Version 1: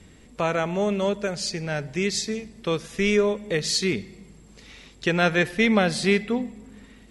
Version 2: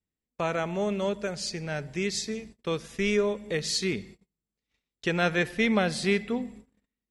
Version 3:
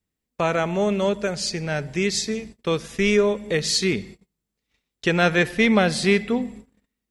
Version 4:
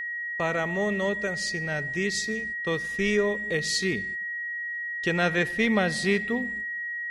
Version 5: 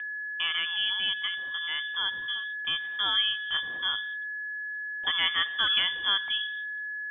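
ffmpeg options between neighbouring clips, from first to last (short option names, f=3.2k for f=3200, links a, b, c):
-af "agate=range=-36dB:threshold=-41dB:ratio=16:detection=peak,volume=-4.5dB"
-af "acontrast=74"
-af "aeval=exprs='val(0)+0.0631*sin(2*PI*1900*n/s)':c=same,volume=-6dB"
-af "lowpass=f=3.1k:t=q:w=0.5098,lowpass=f=3.1k:t=q:w=0.6013,lowpass=f=3.1k:t=q:w=0.9,lowpass=f=3.1k:t=q:w=2.563,afreqshift=-3600,volume=-2.5dB"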